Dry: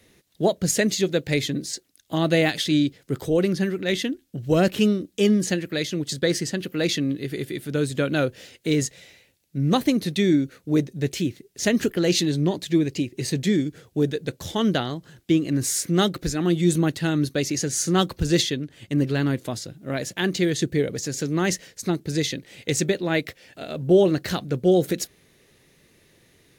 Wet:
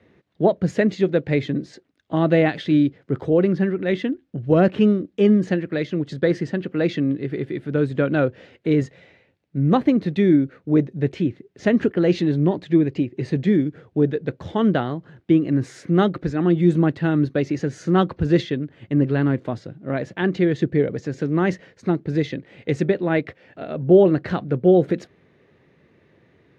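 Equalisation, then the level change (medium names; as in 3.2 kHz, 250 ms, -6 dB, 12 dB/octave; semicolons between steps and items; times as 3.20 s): high-pass 78 Hz; low-pass 1.7 kHz 12 dB/octave; +3.5 dB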